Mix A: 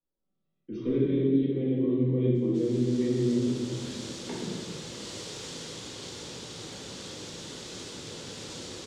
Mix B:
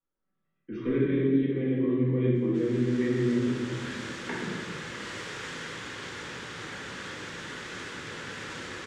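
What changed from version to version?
master: add drawn EQ curve 690 Hz 0 dB, 1,700 Hz +15 dB, 4,200 Hz −5 dB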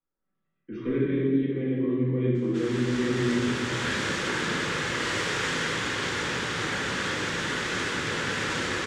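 background +10.0 dB

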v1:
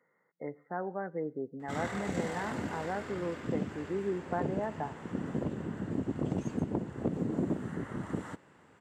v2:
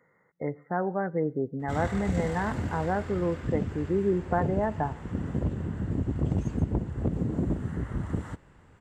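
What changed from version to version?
speech +7.0 dB
master: remove high-pass filter 200 Hz 12 dB per octave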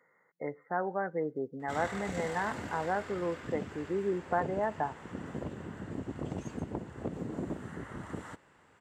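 speech: send −8.0 dB
master: add high-pass filter 550 Hz 6 dB per octave

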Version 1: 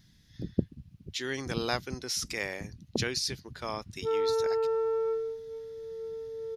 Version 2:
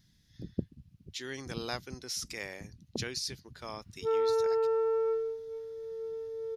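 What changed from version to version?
speech −6.5 dB
master: add bass and treble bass +1 dB, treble +3 dB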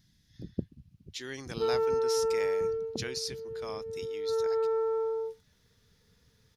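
background: entry −2.45 s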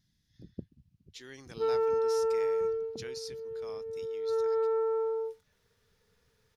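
speech −8.0 dB

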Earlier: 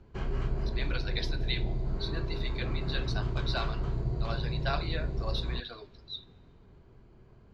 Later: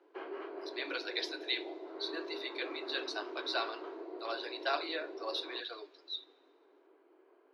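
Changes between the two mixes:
background: add high-frequency loss of the air 340 metres
master: add Butterworth high-pass 290 Hz 96 dB per octave

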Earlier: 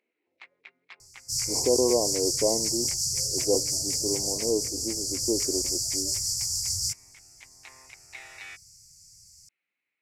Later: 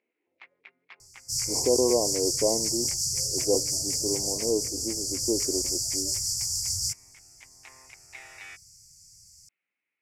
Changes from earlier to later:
first sound: add high-frequency loss of the air 110 metres
master: add parametric band 4,000 Hz −4.5 dB 0.26 octaves

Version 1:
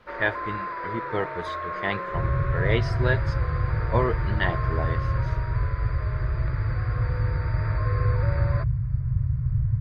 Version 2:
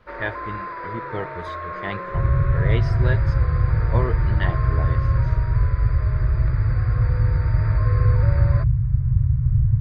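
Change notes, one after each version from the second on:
speech −3.5 dB
master: add low-shelf EQ 190 Hz +7.5 dB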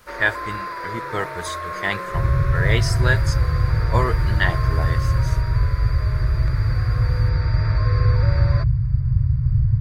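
speech: add parametric band 1,400 Hz +8 dB 1.4 octaves
master: remove high-frequency loss of the air 360 metres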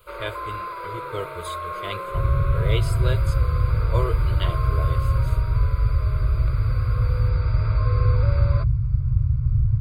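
speech: add parametric band 1,400 Hz −8 dB 1.4 octaves
master: add phaser with its sweep stopped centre 1,200 Hz, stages 8

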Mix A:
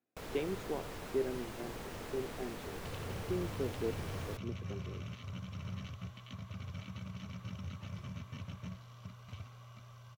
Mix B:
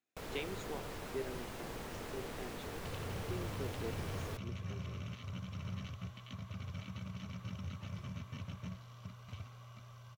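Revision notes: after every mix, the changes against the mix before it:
speech: add tilt shelving filter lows −8.5 dB, about 1,500 Hz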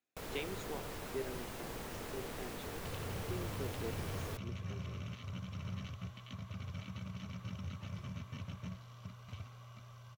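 first sound: add high-shelf EQ 8,700 Hz +5.5 dB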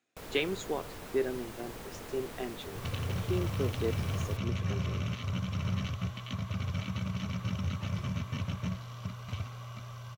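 speech +11.0 dB
second sound +10.0 dB

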